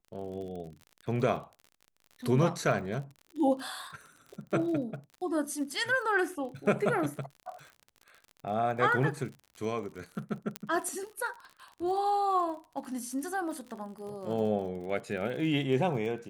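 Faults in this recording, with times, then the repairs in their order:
crackle 48/s -40 dBFS
10.56 pop -15 dBFS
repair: de-click

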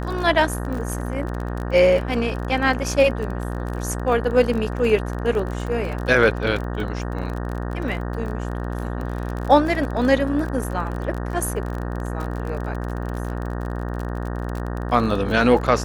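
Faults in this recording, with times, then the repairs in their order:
buzz 60 Hz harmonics 31 -27 dBFS
crackle 31/s -27 dBFS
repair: de-click; de-hum 60 Hz, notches 31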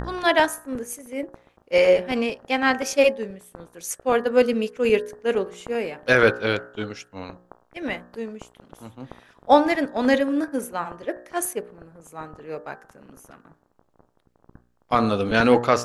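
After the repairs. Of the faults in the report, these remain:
none

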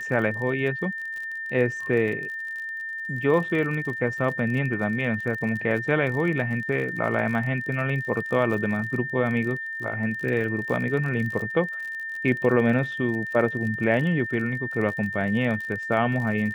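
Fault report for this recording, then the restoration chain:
crackle 39/s -32 dBFS
tone 1800 Hz -30 dBFS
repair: de-click; notch 1800 Hz, Q 30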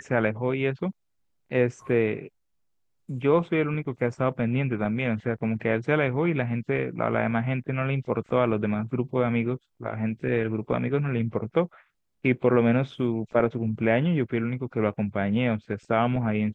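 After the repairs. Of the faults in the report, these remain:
none

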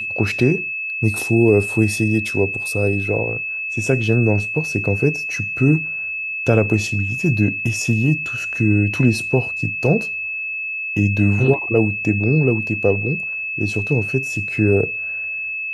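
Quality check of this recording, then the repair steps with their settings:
tone 2600 Hz -23 dBFS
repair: notch 2600 Hz, Q 30

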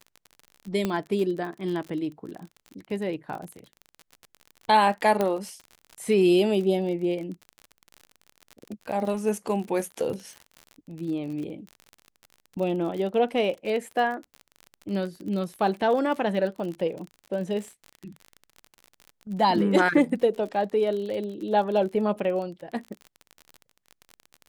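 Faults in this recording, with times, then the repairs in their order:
crackle 40/s -33 dBFS
0.85 pop -13 dBFS
5.21 pop -12 dBFS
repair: de-click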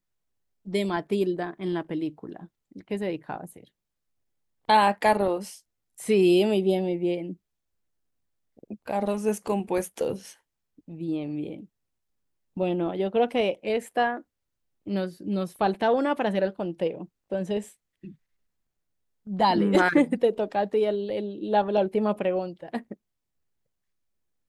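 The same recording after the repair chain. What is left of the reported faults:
0.85 pop

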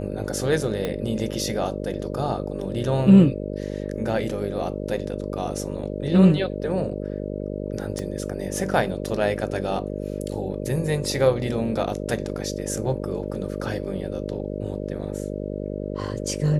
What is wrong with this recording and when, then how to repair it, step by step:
buzz 50 Hz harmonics 12 -30 dBFS
0.85 pop -13 dBFS
7.99 pop -18 dBFS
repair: de-click; de-hum 50 Hz, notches 12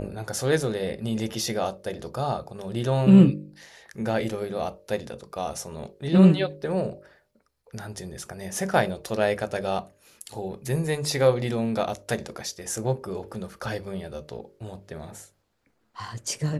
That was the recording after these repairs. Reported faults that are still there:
0.85 pop
7.99 pop

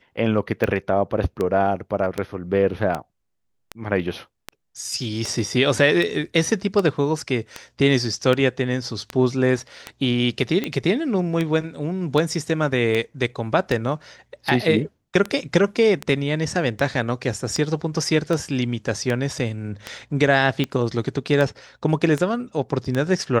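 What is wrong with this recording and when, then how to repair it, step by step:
tick 78 rpm -11 dBFS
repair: de-click

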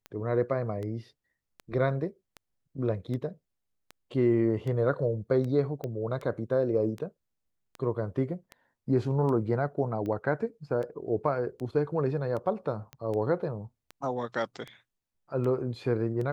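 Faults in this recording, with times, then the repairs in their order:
tick 78 rpm -26 dBFS
5.84 pop -23 dBFS
12.93 pop -26 dBFS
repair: de-click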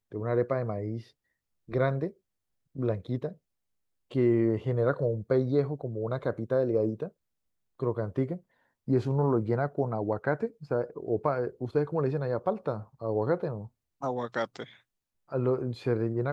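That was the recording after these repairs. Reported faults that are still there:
none

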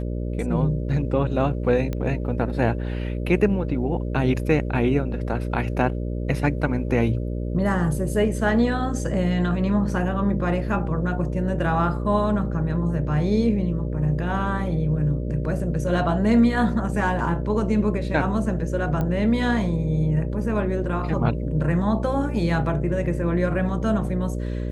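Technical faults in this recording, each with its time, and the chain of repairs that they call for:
buzz 60 Hz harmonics 10 -27 dBFS
1.93 pop -16 dBFS
19.01 pop -15 dBFS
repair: de-click; de-hum 60 Hz, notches 10

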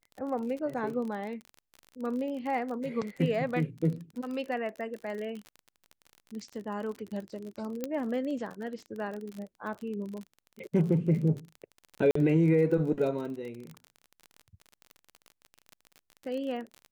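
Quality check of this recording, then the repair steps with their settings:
crackle 37/s -36 dBFS
7.84 pop -18 dBFS
12.11–12.15 gap 44 ms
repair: de-click; interpolate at 12.11, 44 ms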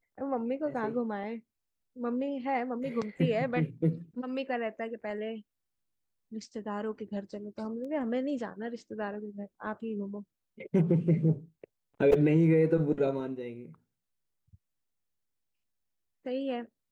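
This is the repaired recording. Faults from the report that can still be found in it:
7.84 pop

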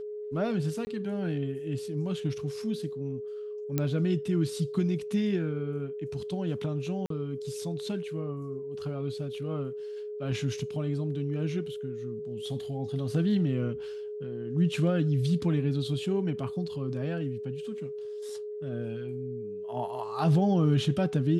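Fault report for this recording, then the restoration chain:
tone 420 Hz -35 dBFS
0.85–0.87 gap 20 ms
3.78 pop -14 dBFS
7.06–7.1 gap 43 ms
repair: de-click; notch 420 Hz, Q 30; interpolate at 0.85, 20 ms; interpolate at 7.06, 43 ms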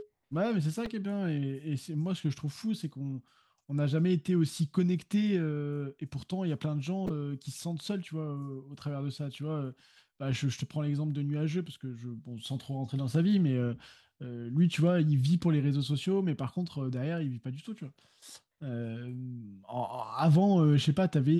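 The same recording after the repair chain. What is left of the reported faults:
none

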